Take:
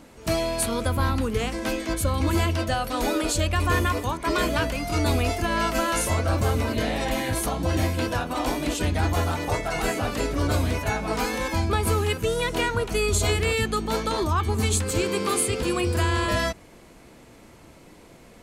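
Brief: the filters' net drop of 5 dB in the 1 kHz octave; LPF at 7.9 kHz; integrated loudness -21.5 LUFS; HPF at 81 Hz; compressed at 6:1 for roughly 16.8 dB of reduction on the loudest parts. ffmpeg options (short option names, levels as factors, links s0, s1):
-af "highpass=81,lowpass=7900,equalizer=f=1000:t=o:g=-6.5,acompressor=threshold=0.01:ratio=6,volume=10.6"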